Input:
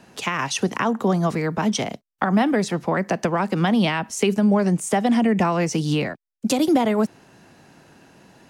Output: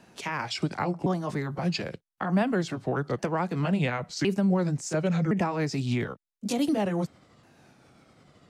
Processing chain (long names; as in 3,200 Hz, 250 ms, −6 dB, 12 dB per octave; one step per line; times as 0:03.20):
pitch shifter swept by a sawtooth −6 semitones, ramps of 1,062 ms
level −5.5 dB